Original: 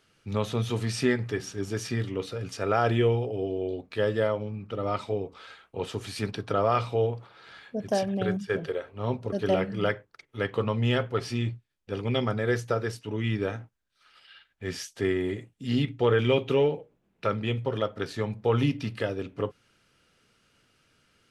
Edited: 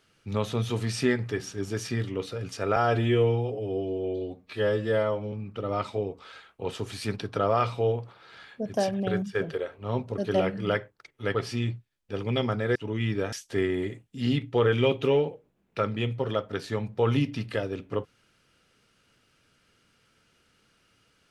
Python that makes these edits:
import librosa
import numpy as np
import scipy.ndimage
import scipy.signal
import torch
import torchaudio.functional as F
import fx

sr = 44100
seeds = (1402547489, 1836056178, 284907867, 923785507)

y = fx.edit(x, sr, fx.stretch_span(start_s=2.76, length_s=1.71, factor=1.5),
    fx.cut(start_s=10.49, length_s=0.64),
    fx.cut(start_s=12.54, length_s=0.45),
    fx.cut(start_s=13.56, length_s=1.23), tone=tone)